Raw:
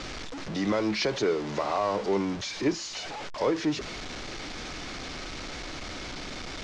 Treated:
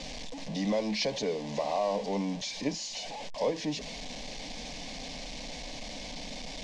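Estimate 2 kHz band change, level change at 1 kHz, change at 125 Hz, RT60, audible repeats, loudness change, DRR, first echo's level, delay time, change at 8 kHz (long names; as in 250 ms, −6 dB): −6.0 dB, −4.0 dB, −3.0 dB, no reverb audible, no echo audible, −3.5 dB, no reverb audible, no echo audible, no echo audible, −0.5 dB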